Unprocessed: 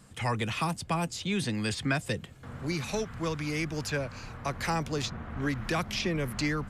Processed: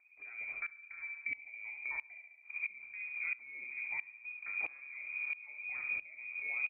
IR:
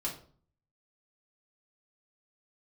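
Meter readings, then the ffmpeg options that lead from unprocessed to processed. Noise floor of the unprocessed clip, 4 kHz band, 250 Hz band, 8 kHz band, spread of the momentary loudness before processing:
−48 dBFS, below −35 dB, below −35 dB, below −40 dB, 6 LU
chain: -filter_complex "[0:a]aemphasis=mode=reproduction:type=riaa,agate=range=-24dB:threshold=-27dB:ratio=16:detection=peak,equalizer=frequency=830:width=1.3:gain=-9,acompressor=mode=upward:threshold=-34dB:ratio=2.5,alimiter=limit=-22.5dB:level=0:latency=1:release=214,acompressor=threshold=-37dB:ratio=2.5,aeval=exprs='0.0501*(cos(1*acos(clip(val(0)/0.0501,-1,1)))-cos(1*PI/2))+0.00562*(cos(3*acos(clip(val(0)/0.0501,-1,1)))-cos(3*PI/2))+0.00158*(cos(5*acos(clip(val(0)/0.0501,-1,1)))-cos(5*PI/2))':channel_layout=same,asplit=2[link_01][link_02];[link_02]adelay=30,volume=-10.5dB[link_03];[link_01][link_03]amix=inputs=2:normalize=0,aecho=1:1:70|140|210|280|350|420:0.398|0.207|0.108|0.056|0.0291|0.0151,asplit=2[link_04][link_05];[1:a]atrim=start_sample=2205[link_06];[link_05][link_06]afir=irnorm=-1:irlink=0,volume=-11dB[link_07];[link_04][link_07]amix=inputs=2:normalize=0,lowpass=frequency=2100:width_type=q:width=0.5098,lowpass=frequency=2100:width_type=q:width=0.6013,lowpass=frequency=2100:width_type=q:width=0.9,lowpass=frequency=2100:width_type=q:width=2.563,afreqshift=-2500,aeval=exprs='val(0)*pow(10,-20*if(lt(mod(-1.5*n/s,1),2*abs(-1.5)/1000),1-mod(-1.5*n/s,1)/(2*abs(-1.5)/1000),(mod(-1.5*n/s,1)-2*abs(-1.5)/1000)/(1-2*abs(-1.5)/1000))/20)':channel_layout=same"

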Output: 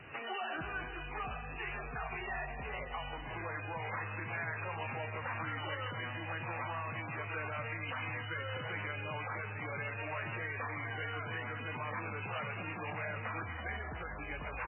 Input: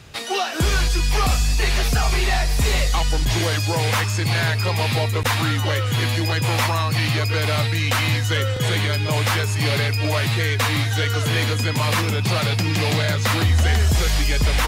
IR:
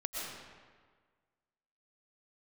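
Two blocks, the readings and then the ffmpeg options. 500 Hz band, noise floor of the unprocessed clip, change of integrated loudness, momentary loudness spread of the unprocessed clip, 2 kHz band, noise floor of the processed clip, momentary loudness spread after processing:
−17.5 dB, −22 dBFS, −19.5 dB, 2 LU, −14.5 dB, −44 dBFS, 3 LU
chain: -filter_complex "[0:a]equalizer=frequency=3000:width_type=o:width=0.78:gain=-2,aecho=1:1:574|1148:0.141|0.0283,alimiter=limit=-20.5dB:level=0:latency=1:release=154,aemphasis=mode=production:type=bsi,asplit=2[link_01][link_02];[1:a]atrim=start_sample=2205,asetrate=52920,aresample=44100[link_03];[link_02][link_03]afir=irnorm=-1:irlink=0,volume=-8.5dB[link_04];[link_01][link_04]amix=inputs=2:normalize=0,acrossover=split=210|660|1700[link_05][link_06][link_07][link_08];[link_05]acompressor=threshold=-39dB:ratio=4[link_09];[link_06]acompressor=threshold=-46dB:ratio=4[link_10];[link_07]acompressor=threshold=-34dB:ratio=4[link_11];[link_08]acompressor=threshold=-32dB:ratio=4[link_12];[link_09][link_10][link_11][link_12]amix=inputs=4:normalize=0,volume=-5dB" -ar 12000 -c:a libmp3lame -b:a 8k

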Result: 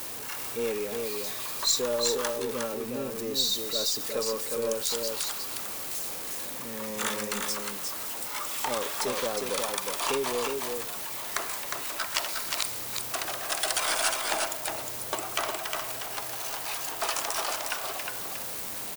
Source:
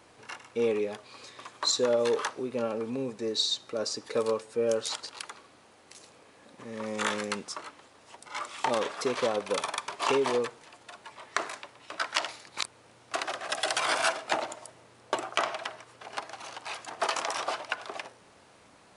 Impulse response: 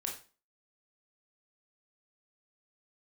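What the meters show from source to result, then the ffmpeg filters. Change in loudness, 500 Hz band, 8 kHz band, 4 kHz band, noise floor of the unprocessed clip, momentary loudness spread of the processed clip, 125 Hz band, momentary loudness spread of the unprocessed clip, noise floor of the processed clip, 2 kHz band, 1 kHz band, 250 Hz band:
+1.5 dB, −2.0 dB, +8.0 dB, +3.0 dB, −58 dBFS, 7 LU, +1.0 dB, 18 LU, −37 dBFS, 0.0 dB, −1.0 dB, −1.5 dB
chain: -filter_complex "[0:a]aeval=exprs='val(0)+0.5*0.0178*sgn(val(0))':channel_layout=same,aemphasis=mode=production:type=50fm,aeval=exprs='0.708*(cos(1*acos(clip(val(0)/0.708,-1,1)))-cos(1*PI/2))+0.01*(cos(8*acos(clip(val(0)/0.708,-1,1)))-cos(8*PI/2))':channel_layout=same,asplit=2[link_01][link_02];[link_02]aecho=0:1:359:0.631[link_03];[link_01][link_03]amix=inputs=2:normalize=0,volume=-4.5dB"

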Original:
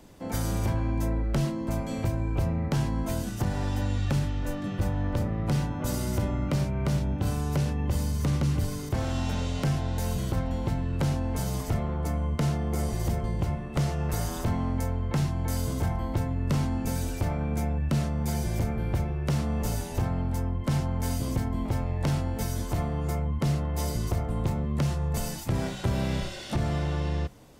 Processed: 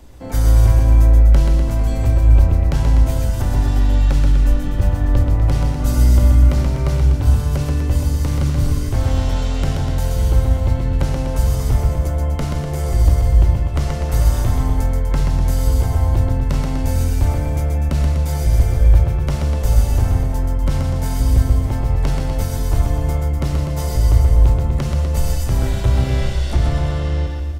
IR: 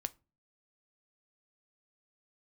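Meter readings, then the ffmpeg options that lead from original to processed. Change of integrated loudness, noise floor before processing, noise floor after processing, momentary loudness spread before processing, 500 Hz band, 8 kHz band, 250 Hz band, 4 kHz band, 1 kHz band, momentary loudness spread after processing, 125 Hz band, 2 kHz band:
+11.5 dB, −35 dBFS, −22 dBFS, 3 LU, +7.0 dB, +6.0 dB, +4.0 dB, +6.0 dB, +6.0 dB, 7 LU, +11.0 dB, +6.0 dB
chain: -filter_complex "[0:a]lowshelf=frequency=100:width_type=q:width=1.5:gain=10.5,aecho=1:1:130|247|352.3|447.1|532.4:0.631|0.398|0.251|0.158|0.1[link_01];[1:a]atrim=start_sample=2205[link_02];[link_01][link_02]afir=irnorm=-1:irlink=0,volume=5dB"

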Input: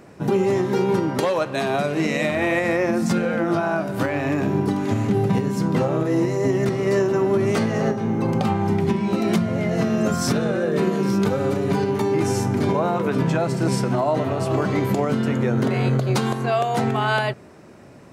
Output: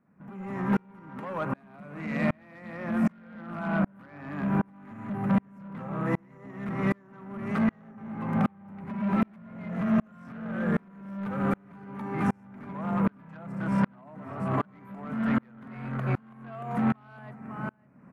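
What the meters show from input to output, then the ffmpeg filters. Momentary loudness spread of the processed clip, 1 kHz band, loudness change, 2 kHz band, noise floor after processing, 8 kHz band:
15 LU, −10.0 dB, −9.5 dB, −10.5 dB, −56 dBFS, below −25 dB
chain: -filter_complex "[0:a]highshelf=frequency=3400:gain=-11.5,acrossover=split=630|5600[link_01][link_02][link_03];[link_01]acompressor=threshold=-34dB:ratio=4[link_04];[link_02]acompressor=threshold=-36dB:ratio=4[link_05];[link_03]acompressor=threshold=-54dB:ratio=4[link_06];[link_04][link_05][link_06]amix=inputs=3:normalize=0,firequalizer=gain_entry='entry(110,0);entry(200,13);entry(350,-5);entry(1200,7);entry(2400,1);entry(3500,-16);entry(7300,-10);entry(11000,-3)':delay=0.05:min_phase=1,aecho=1:1:554:0.224,asoftclip=type=tanh:threshold=-23.5dB,aeval=exprs='val(0)*pow(10,-36*if(lt(mod(-1.3*n/s,1),2*abs(-1.3)/1000),1-mod(-1.3*n/s,1)/(2*abs(-1.3)/1000),(mod(-1.3*n/s,1)-2*abs(-1.3)/1000)/(1-2*abs(-1.3)/1000))/20)':channel_layout=same,volume=7.5dB"

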